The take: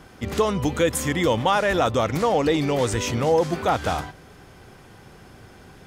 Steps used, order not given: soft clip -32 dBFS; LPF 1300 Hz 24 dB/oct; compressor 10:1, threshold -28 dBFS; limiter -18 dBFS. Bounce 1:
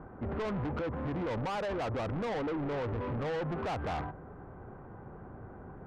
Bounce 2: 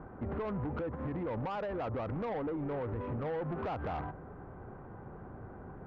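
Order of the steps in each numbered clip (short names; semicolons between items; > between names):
LPF > limiter > soft clip > compressor; limiter > compressor > LPF > soft clip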